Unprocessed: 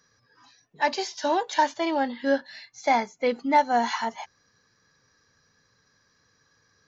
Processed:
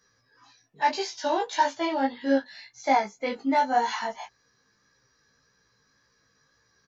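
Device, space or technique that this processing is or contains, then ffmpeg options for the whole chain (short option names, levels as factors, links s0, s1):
double-tracked vocal: -filter_complex "[0:a]asplit=2[s0][s1];[s1]adelay=15,volume=0.708[s2];[s0][s2]amix=inputs=2:normalize=0,flanger=delay=17:depth=2.7:speed=1.8"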